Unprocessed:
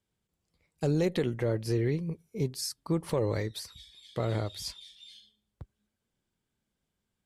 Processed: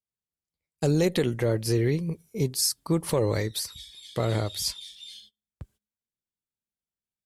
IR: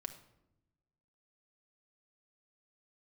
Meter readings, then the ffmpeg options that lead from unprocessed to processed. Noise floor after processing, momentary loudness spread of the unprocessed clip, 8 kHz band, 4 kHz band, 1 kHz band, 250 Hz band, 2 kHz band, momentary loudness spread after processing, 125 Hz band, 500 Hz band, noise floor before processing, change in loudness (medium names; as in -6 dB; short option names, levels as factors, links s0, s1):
under -85 dBFS, 18 LU, +11.0 dB, +8.5 dB, +4.5 dB, +4.0 dB, +5.5 dB, 14 LU, +4.0 dB, +4.0 dB, -84 dBFS, +5.0 dB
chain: -af "agate=range=0.0708:threshold=0.00112:ratio=16:detection=peak,aemphasis=mode=production:type=cd,volume=1.68"